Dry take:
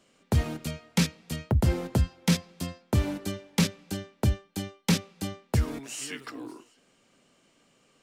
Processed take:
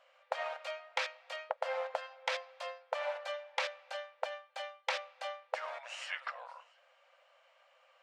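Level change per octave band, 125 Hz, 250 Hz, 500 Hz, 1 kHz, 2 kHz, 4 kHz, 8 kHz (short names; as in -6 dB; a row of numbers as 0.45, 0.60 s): under -40 dB, under -40 dB, -3.0 dB, +1.0 dB, -1.0 dB, -7.0 dB, -18.0 dB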